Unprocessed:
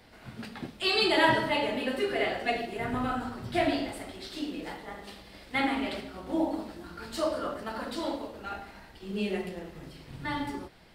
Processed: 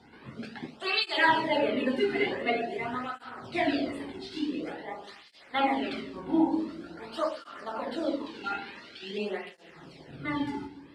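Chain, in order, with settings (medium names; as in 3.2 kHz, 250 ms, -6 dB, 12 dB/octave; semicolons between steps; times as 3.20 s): 8.26–9.18 s: frequency weighting D; LFO notch sine 1.3 Hz 510–7100 Hz; distance through air 80 m; reverberation RT60 1.1 s, pre-delay 7 ms, DRR 11.5 dB; cancelling through-zero flanger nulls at 0.47 Hz, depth 1.8 ms; trim +4.5 dB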